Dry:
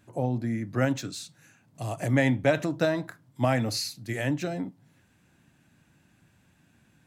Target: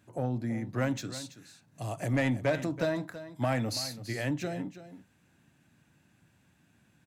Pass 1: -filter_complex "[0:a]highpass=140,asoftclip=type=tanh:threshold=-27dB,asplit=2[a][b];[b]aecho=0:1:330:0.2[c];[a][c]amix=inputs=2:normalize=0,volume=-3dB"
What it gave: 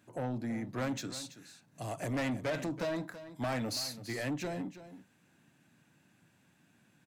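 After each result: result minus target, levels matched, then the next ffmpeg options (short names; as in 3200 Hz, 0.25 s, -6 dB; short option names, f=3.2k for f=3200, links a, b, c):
soft clip: distortion +9 dB; 125 Hz band -3.0 dB
-filter_complex "[0:a]highpass=140,asoftclip=type=tanh:threshold=-16.5dB,asplit=2[a][b];[b]aecho=0:1:330:0.2[c];[a][c]amix=inputs=2:normalize=0,volume=-3dB"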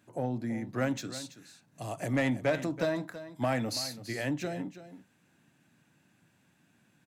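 125 Hz band -3.0 dB
-filter_complex "[0:a]highpass=52,asoftclip=type=tanh:threshold=-16.5dB,asplit=2[a][b];[b]aecho=0:1:330:0.2[c];[a][c]amix=inputs=2:normalize=0,volume=-3dB"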